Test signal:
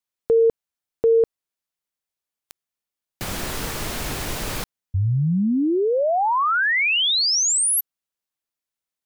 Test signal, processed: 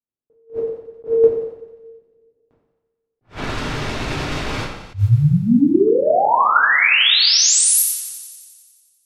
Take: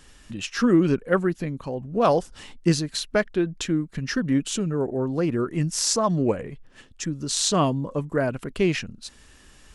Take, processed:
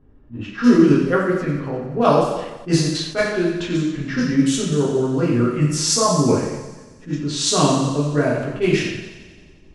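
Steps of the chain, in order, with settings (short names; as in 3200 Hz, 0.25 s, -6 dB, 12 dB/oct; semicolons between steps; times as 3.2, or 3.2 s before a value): two-slope reverb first 0.88 s, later 2.5 s, from -20 dB, DRR -5 dB; low-pass opened by the level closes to 480 Hz, open at -13.5 dBFS; on a send: thinning echo 89 ms, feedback 70%, high-pass 570 Hz, level -12 dB; on the sum: attack slew limiter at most 270 dB/s; gain -1 dB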